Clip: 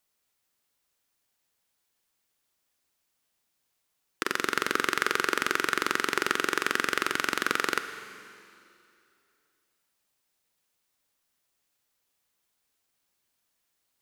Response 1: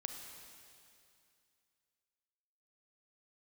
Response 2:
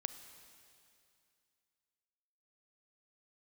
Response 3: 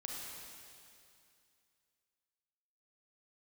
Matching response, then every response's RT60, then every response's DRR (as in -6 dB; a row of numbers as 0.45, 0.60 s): 2; 2.5, 2.5, 2.5 s; 3.5, 10.0, -2.5 dB